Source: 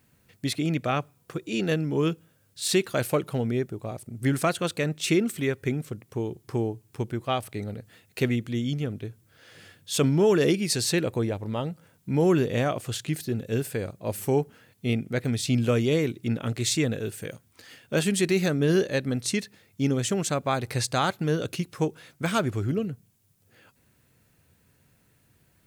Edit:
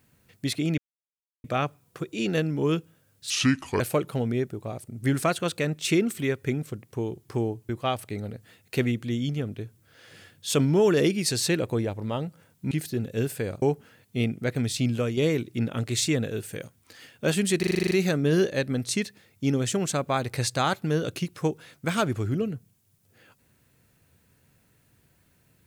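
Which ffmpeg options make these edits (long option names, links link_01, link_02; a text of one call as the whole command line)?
ffmpeg -i in.wav -filter_complex "[0:a]asplit=16[link_01][link_02][link_03][link_04][link_05][link_06][link_07][link_08][link_09][link_10][link_11][link_12][link_13][link_14][link_15][link_16];[link_01]atrim=end=0.78,asetpts=PTS-STARTPTS,afade=type=out:start_time=0.776:duration=0.004:curve=hsin,apad=pad_dur=0.66[link_17];[link_02]atrim=start=0.78:end=2.644,asetpts=PTS-STARTPTS,afade=type=in:duration=0.004:curve=hsin[link_18];[link_03]atrim=start=2.64:end=2.99,asetpts=PTS-STARTPTS,asetrate=30870,aresample=44100[link_19];[link_04]atrim=start=2.986:end=6.882[link_20];[link_05]atrim=start=7.128:end=12.152[link_21];[link_06]atrim=start=13.058:end=13.972[link_22];[link_07]atrim=start=14.308:end=15.86,asetpts=PTS-STARTPTS,afade=type=out:start_time=1.102:duration=0.45:silence=0.473151[link_23];[link_08]atrim=start=15.86:end=18.322,asetpts=PTS-STARTPTS,afade=type=in:duration=0.004:curve=hsin:silence=0.473151[link_24];[link_09]atrim=start=18.278:end=18.322[link_25];[link_10]atrim=start=18.278:end=18.322[link_26];[link_11]atrim=start=18.278:end=18.322[link_27];[link_12]atrim=start=18.278:end=18.322[link_28];[link_13]atrim=start=18.278:end=18.322[link_29];[link_14]atrim=start=18.278:end=18.322[link_30];[link_15]atrim=start=18.278:end=18.322[link_31];[link_16]atrim=start=18.278[link_32];[link_17][link_18]concat=n=2:v=0:a=1[link_33];[link_33][link_19]acrossfade=duration=0.004:curve1=hsin:curve2=hsin[link_34];[link_34][link_20]acrossfade=duration=0.004:curve1=hsin:curve2=hsin[link_35];[link_35][link_21]acrossfade=duration=0.004:curve1=hsin:curve2=hsin[link_36];[link_36][link_22]acrossfade=duration=0.004:curve1=hsin:curve2=hsin[link_37];[link_23][link_24]concat=n=2:v=0:a=1[link_38];[link_37][link_38]acrossfade=duration=0.004:curve1=hsin:curve2=hsin[link_39];[link_39][link_25]acrossfade=duration=0.004:curve1=hsin:curve2=hsin[link_40];[link_40][link_26]acrossfade=duration=0.004:curve1=hsin:curve2=hsin[link_41];[link_41][link_27]acrossfade=duration=0.004:curve1=hsin:curve2=hsin[link_42];[link_42][link_28]acrossfade=duration=0.004:curve1=hsin:curve2=hsin[link_43];[link_43][link_29]acrossfade=duration=0.004:curve1=hsin:curve2=hsin[link_44];[link_44][link_30]acrossfade=duration=0.004:curve1=hsin:curve2=hsin[link_45];[link_45][link_31]acrossfade=duration=0.004:curve1=hsin:curve2=hsin[link_46];[link_46][link_32]acrossfade=duration=0.004:curve1=hsin:curve2=hsin" out.wav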